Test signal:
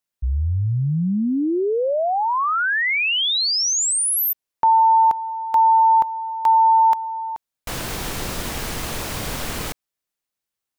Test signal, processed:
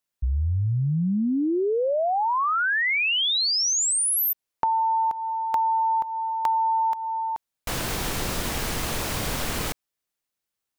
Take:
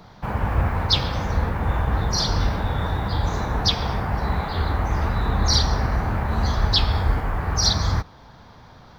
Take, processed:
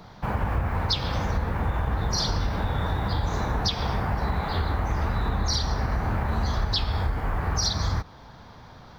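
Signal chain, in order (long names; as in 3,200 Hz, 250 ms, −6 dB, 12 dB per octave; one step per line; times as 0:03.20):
downward compressor 10 to 1, threshold −21 dBFS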